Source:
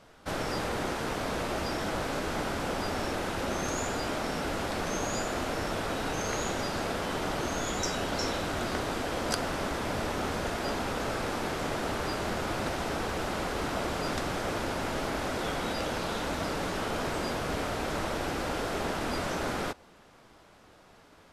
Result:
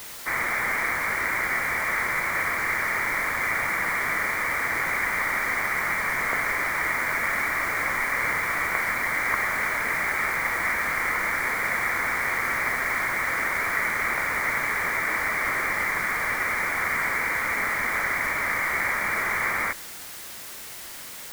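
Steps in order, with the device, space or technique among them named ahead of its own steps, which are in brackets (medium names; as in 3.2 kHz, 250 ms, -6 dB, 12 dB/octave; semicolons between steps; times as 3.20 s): scrambled radio voice (band-pass 380–3100 Hz; frequency inversion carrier 2.6 kHz; white noise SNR 13 dB); trim +8.5 dB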